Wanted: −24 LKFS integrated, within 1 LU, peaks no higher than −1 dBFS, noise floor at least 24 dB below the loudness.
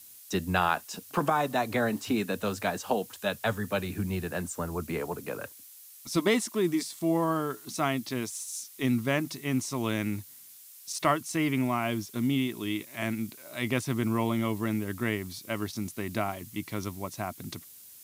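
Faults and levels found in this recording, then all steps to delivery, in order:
background noise floor −51 dBFS; target noise floor −55 dBFS; integrated loudness −30.5 LKFS; sample peak −12.0 dBFS; target loudness −24.0 LKFS
→ noise reduction from a noise print 6 dB
level +6.5 dB

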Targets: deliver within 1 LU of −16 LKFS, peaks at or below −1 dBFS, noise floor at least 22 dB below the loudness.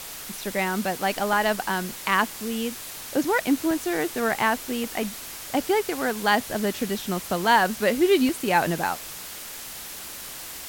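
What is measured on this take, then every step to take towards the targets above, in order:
number of dropouts 7; longest dropout 1.2 ms; background noise floor −38 dBFS; target noise floor −47 dBFS; integrated loudness −25.0 LKFS; sample peak −6.5 dBFS; target loudness −16.0 LKFS
→ repair the gap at 0:00.44/0:01.33/0:02.24/0:03.71/0:04.84/0:07.45/0:08.29, 1.2 ms
noise reduction from a noise print 9 dB
level +9 dB
brickwall limiter −1 dBFS

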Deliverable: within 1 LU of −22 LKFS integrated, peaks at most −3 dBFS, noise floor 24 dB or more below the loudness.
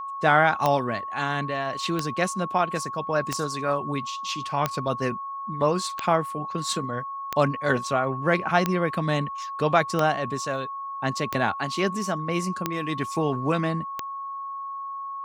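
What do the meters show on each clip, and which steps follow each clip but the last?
number of clicks 11; interfering tone 1,100 Hz; level of the tone −31 dBFS; integrated loudness −26.0 LKFS; sample peak −6.0 dBFS; target loudness −22.0 LKFS
→ click removal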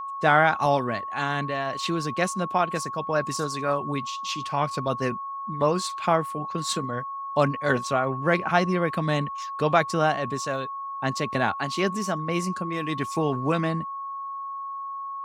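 number of clicks 0; interfering tone 1,100 Hz; level of the tone −31 dBFS
→ notch filter 1,100 Hz, Q 30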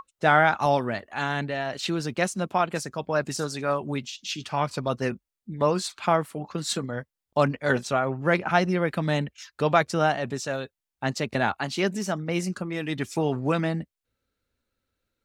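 interfering tone none found; integrated loudness −26.5 LKFS; sample peak −6.0 dBFS; target loudness −22.0 LKFS
→ level +4.5 dB
brickwall limiter −3 dBFS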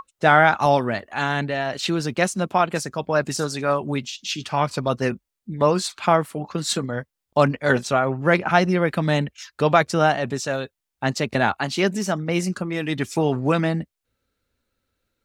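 integrated loudness −22.0 LKFS; sample peak −3.0 dBFS; background noise floor −83 dBFS

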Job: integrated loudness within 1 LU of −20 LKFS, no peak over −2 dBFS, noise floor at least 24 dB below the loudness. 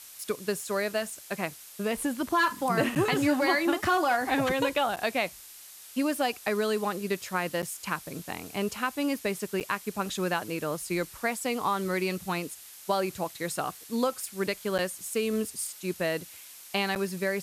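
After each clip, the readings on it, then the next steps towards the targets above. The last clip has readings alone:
number of dropouts 6; longest dropout 8.4 ms; background noise floor −48 dBFS; target noise floor −54 dBFS; integrated loudness −29.5 LKFS; sample peak −14.0 dBFS; target loudness −20.0 LKFS
→ repair the gap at 0:02.95/0:04.96/0:07.62/0:09.60/0:14.78/0:16.95, 8.4 ms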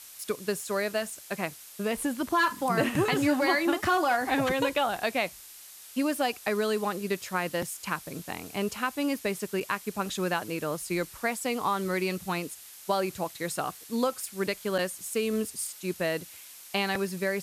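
number of dropouts 0; background noise floor −48 dBFS; target noise floor −54 dBFS
→ broadband denoise 6 dB, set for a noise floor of −48 dBFS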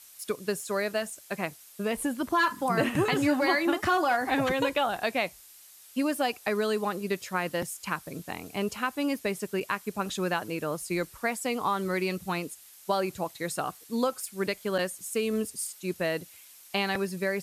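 background noise floor −52 dBFS; target noise floor −54 dBFS
→ broadband denoise 6 dB, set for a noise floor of −52 dBFS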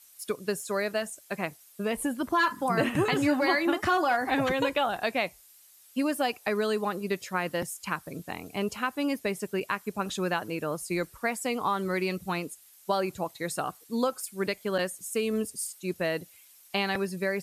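background noise floor −56 dBFS; integrated loudness −29.5 LKFS; sample peak −14.5 dBFS; target loudness −20.0 LKFS
→ level +9.5 dB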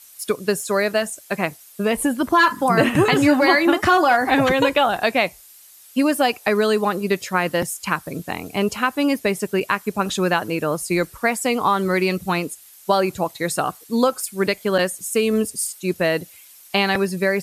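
integrated loudness −20.0 LKFS; sample peak −5.0 dBFS; background noise floor −47 dBFS

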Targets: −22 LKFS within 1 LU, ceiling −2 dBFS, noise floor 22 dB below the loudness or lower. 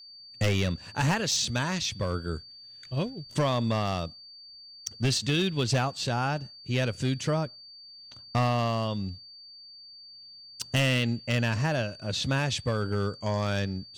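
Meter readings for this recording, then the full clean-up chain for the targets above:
share of clipped samples 1.0%; peaks flattened at −19.5 dBFS; interfering tone 4,600 Hz; level of the tone −46 dBFS; integrated loudness −28.5 LKFS; sample peak −19.5 dBFS; target loudness −22.0 LKFS
→ clipped peaks rebuilt −19.5 dBFS
notch filter 4,600 Hz, Q 30
level +6.5 dB

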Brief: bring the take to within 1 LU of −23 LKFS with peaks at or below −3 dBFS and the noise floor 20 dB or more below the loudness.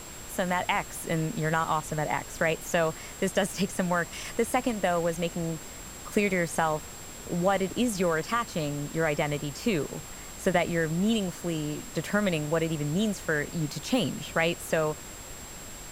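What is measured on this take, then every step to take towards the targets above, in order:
interfering tone 7,600 Hz; level of the tone −45 dBFS; background noise floor −43 dBFS; target noise floor −49 dBFS; integrated loudness −28.5 LKFS; sample peak −11.0 dBFS; target loudness −23.0 LKFS
→ notch filter 7,600 Hz, Q 30
noise reduction from a noise print 6 dB
level +5.5 dB

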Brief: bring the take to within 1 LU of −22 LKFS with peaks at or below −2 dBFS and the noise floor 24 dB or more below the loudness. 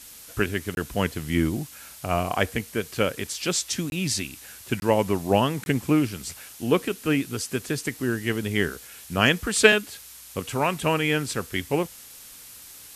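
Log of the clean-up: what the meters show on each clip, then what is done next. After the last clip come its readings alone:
number of dropouts 4; longest dropout 21 ms; background noise floor −45 dBFS; target noise floor −49 dBFS; integrated loudness −25.0 LKFS; sample peak −2.0 dBFS; target loudness −22.0 LKFS
→ repair the gap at 0:00.75/0:03.90/0:04.80/0:05.64, 21 ms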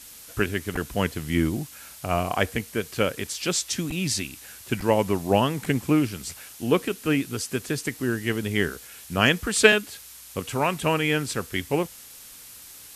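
number of dropouts 0; background noise floor −45 dBFS; target noise floor −49 dBFS
→ noise reduction from a noise print 6 dB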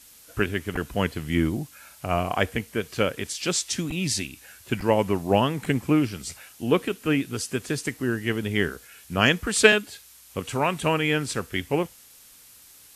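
background noise floor −51 dBFS; integrated loudness −25.0 LKFS; sample peak −2.0 dBFS; target loudness −22.0 LKFS
→ level +3 dB
brickwall limiter −2 dBFS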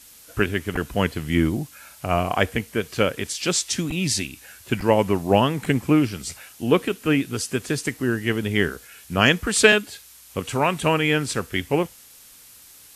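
integrated loudness −22.5 LKFS; sample peak −2.0 dBFS; background noise floor −48 dBFS

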